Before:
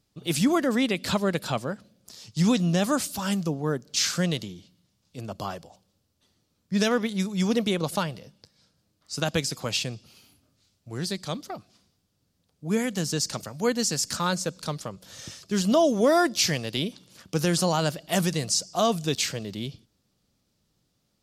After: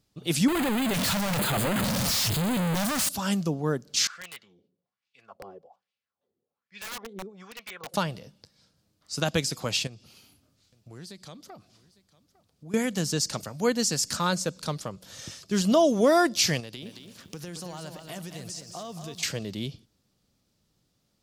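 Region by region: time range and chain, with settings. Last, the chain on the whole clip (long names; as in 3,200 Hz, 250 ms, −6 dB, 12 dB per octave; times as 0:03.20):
0:00.48–0:03.09: sign of each sample alone + auto-filter notch square 1.1 Hz 370–5,600 Hz
0:04.07–0:07.94: LFO wah 1.2 Hz 380–2,500 Hz, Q 3.3 + notch comb filter 310 Hz + wrap-around overflow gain 31 dB
0:09.87–0:12.74: downward compressor 2.5 to 1, threshold −46 dBFS + single-tap delay 854 ms −20 dB
0:16.60–0:19.23: downward compressor 5 to 1, threshold −37 dBFS + feedback echo at a low word length 223 ms, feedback 35%, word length 10 bits, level −7 dB
whole clip: no processing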